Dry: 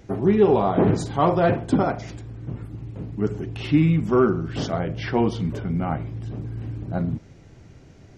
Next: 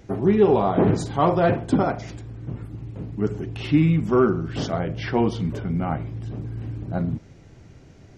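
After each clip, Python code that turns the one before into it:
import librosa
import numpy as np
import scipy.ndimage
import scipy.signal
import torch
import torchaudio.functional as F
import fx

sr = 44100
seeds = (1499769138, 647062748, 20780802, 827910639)

y = x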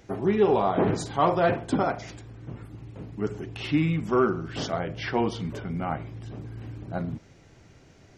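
y = fx.low_shelf(x, sr, hz=420.0, db=-8.0)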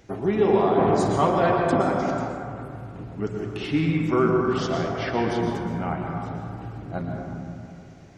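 y = fx.rev_plate(x, sr, seeds[0], rt60_s=2.5, hf_ratio=0.3, predelay_ms=105, drr_db=0.5)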